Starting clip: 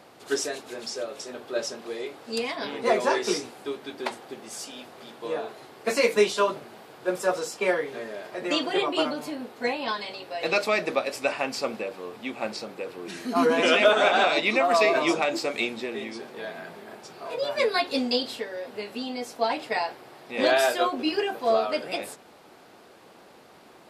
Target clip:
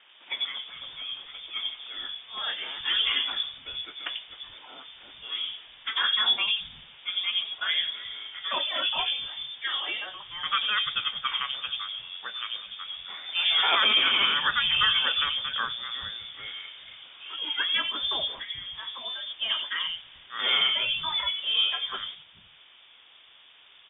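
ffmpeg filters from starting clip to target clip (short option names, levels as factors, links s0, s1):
-filter_complex "[0:a]lowpass=f=3200:t=q:w=0.5098,lowpass=f=3200:t=q:w=0.6013,lowpass=f=3200:t=q:w=0.9,lowpass=f=3200:t=q:w=2.563,afreqshift=-3800,acrossover=split=180|3000[s0][s1][s2];[s2]adelay=90[s3];[s0]adelay=430[s4];[s4][s1][s3]amix=inputs=3:normalize=0"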